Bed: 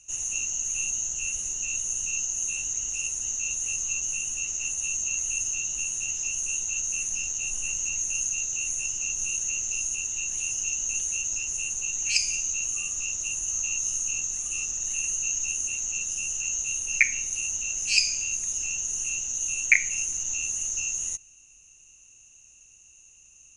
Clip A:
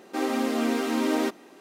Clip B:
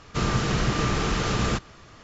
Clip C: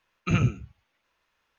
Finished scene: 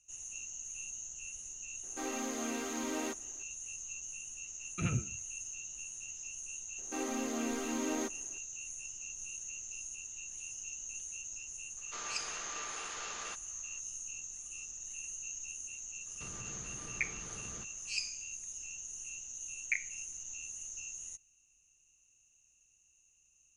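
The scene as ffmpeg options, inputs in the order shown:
ffmpeg -i bed.wav -i cue0.wav -i cue1.wav -i cue2.wav -filter_complex "[1:a]asplit=2[link_01][link_02];[2:a]asplit=2[link_03][link_04];[0:a]volume=-15dB[link_05];[link_01]lowshelf=frequency=500:gain=-5[link_06];[link_03]highpass=720[link_07];[link_04]acompressor=threshold=-28dB:ratio=6:attack=3.2:release=140:knee=1:detection=peak[link_08];[link_06]atrim=end=1.6,asetpts=PTS-STARTPTS,volume=-10dB,afade=type=in:duration=0.004:curve=hsin,afade=type=out:start_time=1.596:duration=0.004:curve=hsin,adelay=1830[link_09];[3:a]atrim=end=1.58,asetpts=PTS-STARTPTS,volume=-11dB,afade=type=in:duration=0.004:curve=hsin,afade=type=out:start_time=1.576:duration=0.004:curve=hsin,adelay=4510[link_10];[link_02]atrim=end=1.6,asetpts=PTS-STARTPTS,volume=-11dB,afade=type=in:duration=0.004:curve=hsin,afade=type=out:start_time=1.596:duration=0.004:curve=hsin,adelay=6780[link_11];[link_07]atrim=end=2.03,asetpts=PTS-STARTPTS,volume=-14.5dB,afade=type=in:duration=0.004:curve=hsin,afade=type=out:start_time=2.026:duration=0.004:curve=hsin,adelay=11770[link_12];[link_08]atrim=end=2.03,asetpts=PTS-STARTPTS,volume=-17.5dB,afade=type=in:duration=0.004:curve=hsin,afade=type=out:start_time=2.026:duration=0.004:curve=hsin,adelay=16060[link_13];[link_05][link_09][link_10][link_11][link_12][link_13]amix=inputs=6:normalize=0" out.wav

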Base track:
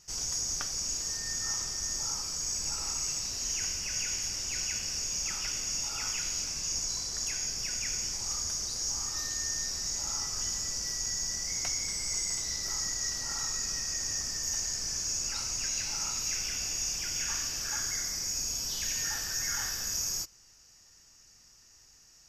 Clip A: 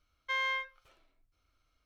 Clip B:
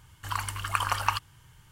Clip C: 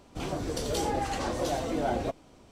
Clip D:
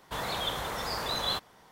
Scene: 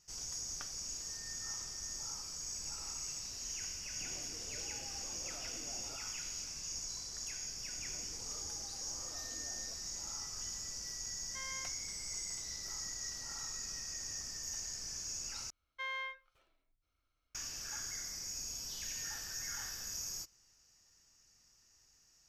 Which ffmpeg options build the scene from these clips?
ffmpeg -i bed.wav -i cue0.wav -i cue1.wav -i cue2.wav -filter_complex "[3:a]asplit=2[link_01][link_02];[1:a]asplit=2[link_03][link_04];[0:a]volume=-9.5dB[link_05];[link_01]acompressor=threshold=-38dB:ratio=6:attack=3.2:release=140:knee=1:detection=peak[link_06];[link_02]acompressor=threshold=-46dB:ratio=6:attack=3.2:release=140:knee=1:detection=peak[link_07];[link_05]asplit=2[link_08][link_09];[link_08]atrim=end=15.504[link_10];[link_04]atrim=end=1.85,asetpts=PTS-STARTPTS,volume=-8dB[link_11];[link_09]atrim=start=17.346[link_12];[link_06]atrim=end=2.51,asetpts=PTS-STARTPTS,volume=-13.5dB,afade=type=in:duration=0.004:curve=hsin,afade=type=out:start_time=2.506:duration=0.004:curve=hsin,adelay=169785S[link_13];[link_07]atrim=end=2.51,asetpts=PTS-STARTPTS,volume=-10.5dB,afade=type=in:duration=0.004:curve=hsin,afade=type=out:start_time=2.506:duration=0.004:curve=hsin,adelay=7630[link_14];[link_03]atrim=end=1.85,asetpts=PTS-STARTPTS,volume=-15dB,afade=type=in:duration=0.004:curve=hsin,afade=type=out:start_time=1.846:duration=0.004:curve=hsin,adelay=487746S[link_15];[link_10][link_11]acrossfade=duration=0.004:curve1=hsin:curve2=hsin[link_16];[link_16][link_12]acrossfade=duration=0.004:curve1=hsin:curve2=hsin[link_17];[link_17][link_13][link_14][link_15]amix=inputs=4:normalize=0" out.wav

